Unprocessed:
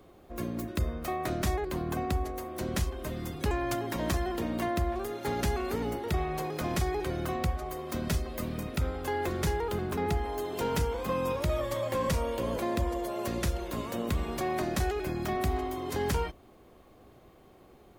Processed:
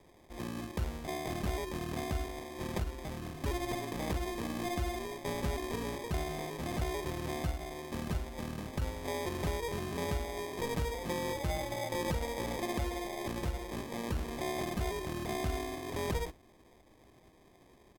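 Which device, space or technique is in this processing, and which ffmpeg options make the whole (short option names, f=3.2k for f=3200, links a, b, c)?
crushed at another speed: -af "asetrate=55125,aresample=44100,acrusher=samples=25:mix=1:aa=0.000001,asetrate=35280,aresample=44100,volume=-5dB"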